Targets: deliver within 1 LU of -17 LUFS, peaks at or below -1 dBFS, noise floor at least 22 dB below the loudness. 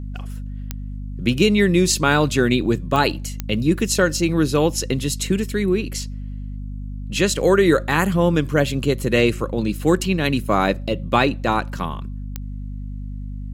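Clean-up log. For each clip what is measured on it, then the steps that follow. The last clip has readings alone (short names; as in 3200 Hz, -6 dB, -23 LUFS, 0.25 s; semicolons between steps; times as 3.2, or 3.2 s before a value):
clicks 4; hum 50 Hz; harmonics up to 250 Hz; hum level -27 dBFS; loudness -19.5 LUFS; peak -2.0 dBFS; loudness target -17.0 LUFS
-> de-click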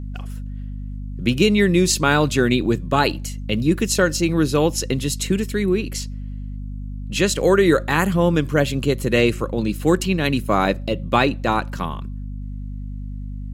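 clicks 0; hum 50 Hz; harmonics up to 250 Hz; hum level -27 dBFS
-> de-hum 50 Hz, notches 5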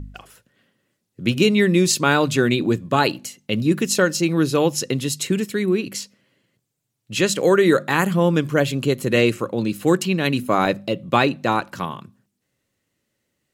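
hum none; loudness -20.0 LUFS; peak -2.5 dBFS; loudness target -17.0 LUFS
-> gain +3 dB; limiter -1 dBFS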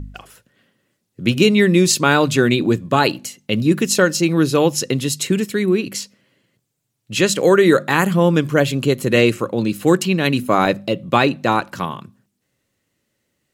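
loudness -17.0 LUFS; peak -1.0 dBFS; noise floor -73 dBFS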